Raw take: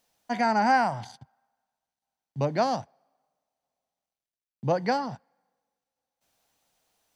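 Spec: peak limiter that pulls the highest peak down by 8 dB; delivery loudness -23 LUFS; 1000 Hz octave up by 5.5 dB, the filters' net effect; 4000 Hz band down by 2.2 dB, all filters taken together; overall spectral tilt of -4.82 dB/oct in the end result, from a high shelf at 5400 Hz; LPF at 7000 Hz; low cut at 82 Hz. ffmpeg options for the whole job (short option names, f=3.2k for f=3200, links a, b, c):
-af "highpass=82,lowpass=7k,equalizer=f=1k:t=o:g=7.5,equalizer=f=4k:t=o:g=-5.5,highshelf=f=5.4k:g=6.5,volume=4dB,alimiter=limit=-12dB:level=0:latency=1"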